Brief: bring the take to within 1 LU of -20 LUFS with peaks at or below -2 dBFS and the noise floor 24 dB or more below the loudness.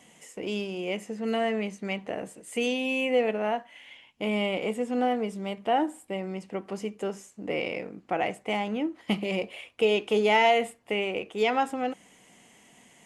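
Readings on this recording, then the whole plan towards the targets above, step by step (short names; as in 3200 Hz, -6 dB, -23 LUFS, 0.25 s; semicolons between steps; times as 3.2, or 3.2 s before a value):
loudness -28.5 LUFS; peak -11.0 dBFS; loudness target -20.0 LUFS
-> gain +8.5 dB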